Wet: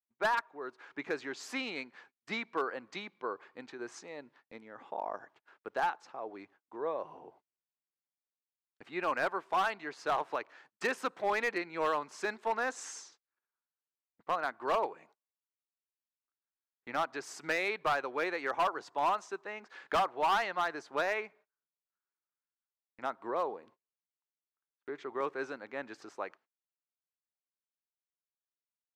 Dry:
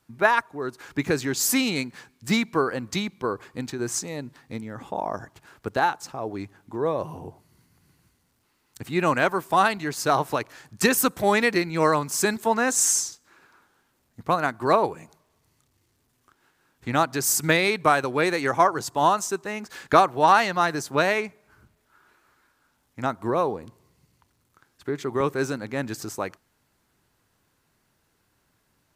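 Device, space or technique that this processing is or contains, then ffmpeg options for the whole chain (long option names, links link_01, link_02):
walkie-talkie: -af "highpass=440,lowpass=2900,asoftclip=type=hard:threshold=-16dB,agate=range=-31dB:threshold=-52dB:ratio=16:detection=peak,volume=-8dB"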